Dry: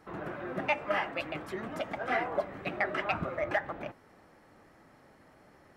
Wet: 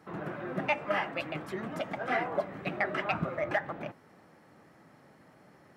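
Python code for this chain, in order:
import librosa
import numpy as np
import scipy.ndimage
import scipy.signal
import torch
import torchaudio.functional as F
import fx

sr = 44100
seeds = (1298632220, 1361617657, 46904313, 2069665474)

y = scipy.signal.sosfilt(scipy.signal.butter(2, 97.0, 'highpass', fs=sr, output='sos'), x)
y = fx.peak_eq(y, sr, hz=160.0, db=5.5, octaves=0.87)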